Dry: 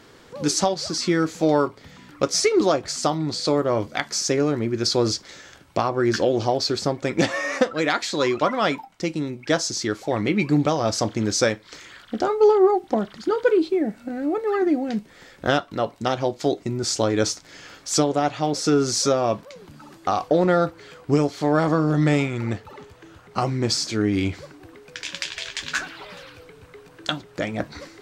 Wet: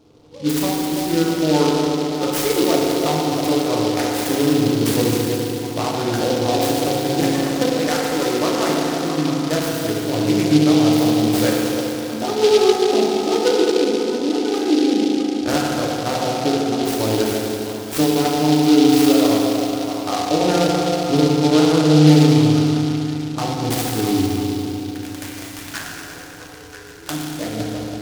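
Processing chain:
adaptive Wiener filter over 25 samples
on a send: echo through a band-pass that steps 330 ms, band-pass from 570 Hz, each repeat 0.7 octaves, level −5 dB
on the sum: feedback delay network reverb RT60 3.2 s, low-frequency decay 1.25×, high-frequency decay 0.95×, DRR −5.5 dB
short delay modulated by noise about 3,700 Hz, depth 0.073 ms
level −4 dB

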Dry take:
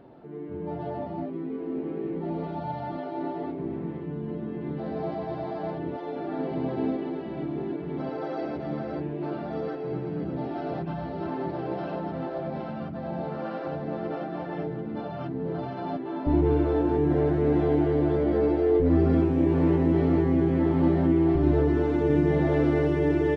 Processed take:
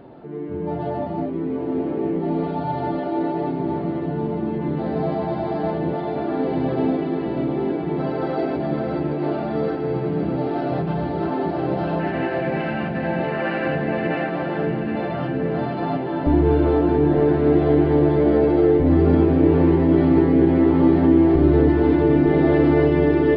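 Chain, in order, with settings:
downsampling to 11,025 Hz
in parallel at +2.5 dB: brickwall limiter −18.5 dBFS, peak gain reduction 8.5 dB
on the sum: gain on a spectral selection 0:12.00–0:14.30, 1,500–3,000 Hz +12 dB
feedback delay with all-pass diffusion 914 ms, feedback 59%, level −7.5 dB

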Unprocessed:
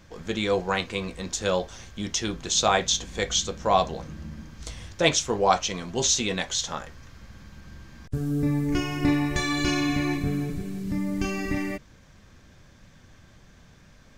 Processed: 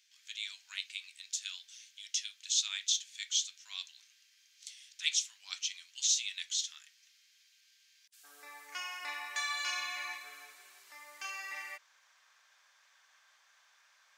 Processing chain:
inverse Chebyshev high-pass filter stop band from 420 Hz, stop band 80 dB, from 0:08.23 stop band from 150 Hz
level −6 dB

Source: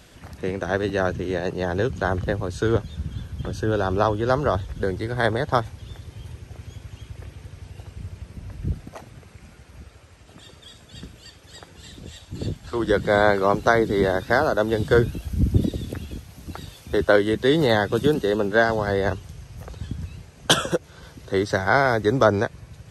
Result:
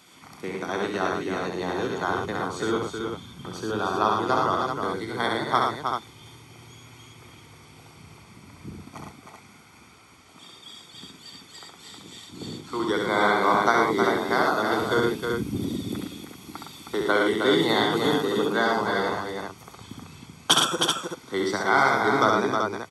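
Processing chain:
high-pass filter 290 Hz 12 dB per octave
comb filter 0.9 ms, depth 64%
multi-tap delay 66/111/315/383 ms −3.5/−5/−5.5/−6 dB
level −3 dB

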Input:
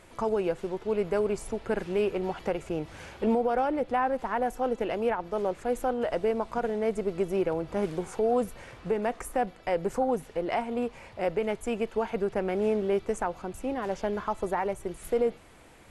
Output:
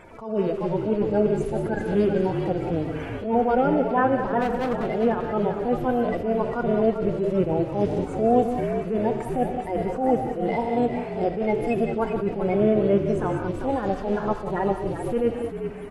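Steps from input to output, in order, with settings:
spectral magnitudes quantised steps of 30 dB
high-shelf EQ 3,800 Hz −9 dB
reverb whose tail is shaped and stops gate 220 ms rising, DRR 9 dB
in parallel at +2.5 dB: downward compressor, threshold −34 dBFS, peak gain reduction 12.5 dB
on the sum: harmonic and percussive parts rebalanced percussive −12 dB
0:04.40–0:04.86: gain into a clipping stage and back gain 27 dB
on a send: echo with shifted repeats 393 ms, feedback 43%, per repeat −55 Hz, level −8 dB
on the sum: level that may rise only so fast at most 100 dB per second
level +4.5 dB

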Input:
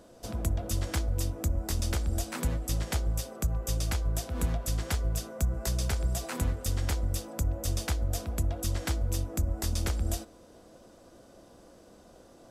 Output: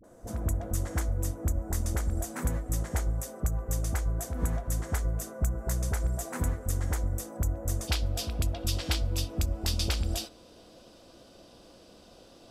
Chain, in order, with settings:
flat-topped bell 3,600 Hz −10 dB 1.3 octaves, from 0:07.83 +8.5 dB
all-pass dispersion highs, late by 41 ms, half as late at 530 Hz

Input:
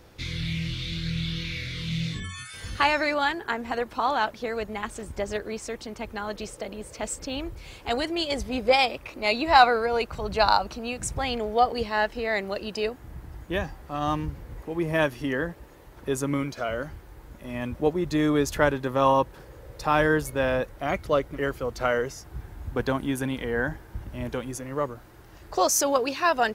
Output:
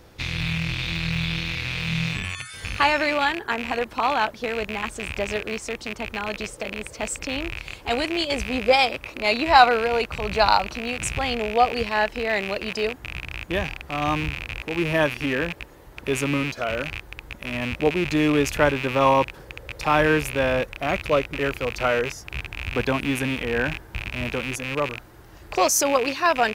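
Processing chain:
loose part that buzzes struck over −41 dBFS, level −20 dBFS
level +2.5 dB

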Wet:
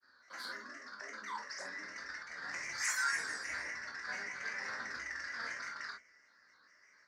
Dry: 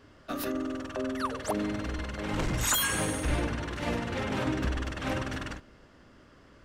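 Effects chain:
pitch vibrato 0.47 Hz 41 cents
speed change −6%
pair of resonant band-passes 3,000 Hz, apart 1.5 octaves
granular cloud, spray 38 ms, pitch spread up and down by 3 semitones
convolution reverb, pre-delay 12 ms, DRR 0 dB
level +3 dB

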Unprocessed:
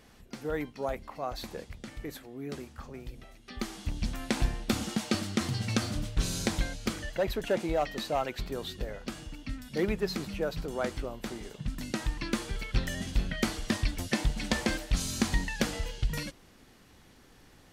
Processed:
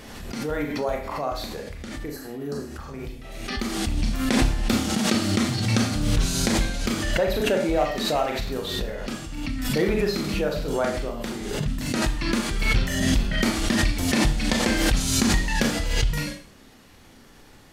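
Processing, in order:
healed spectral selection 0:02.08–0:02.71, 1,800–3,900 Hz after
four-comb reverb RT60 0.43 s, combs from 27 ms, DRR 1 dB
background raised ahead of every attack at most 36 dB per second
level +4 dB

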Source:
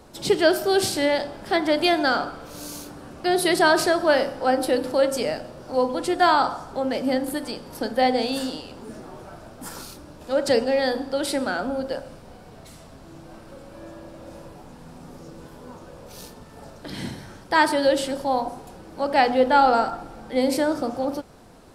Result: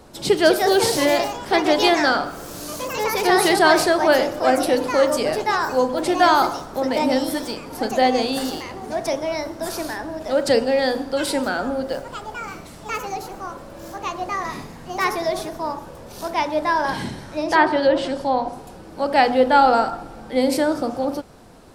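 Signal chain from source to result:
delay with pitch and tempo change per echo 249 ms, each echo +3 semitones, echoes 3, each echo −6 dB
0:17.03–0:18.53: treble cut that deepens with the level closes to 2,400 Hz, closed at −14.5 dBFS
level +2.5 dB

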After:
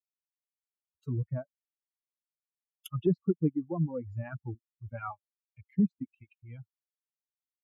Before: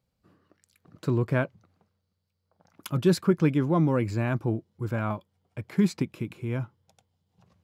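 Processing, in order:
spectral dynamics exaggerated over time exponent 3
treble cut that deepens with the level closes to 470 Hz, closed at −27 dBFS
reverb reduction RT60 1.1 s
0:04.95–0:05.61: low-pass with resonance 2,500 Hz, resonance Q 2.5

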